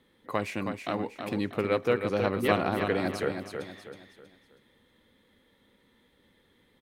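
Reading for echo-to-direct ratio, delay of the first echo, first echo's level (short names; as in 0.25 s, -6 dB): -6.0 dB, 0.32 s, -6.5 dB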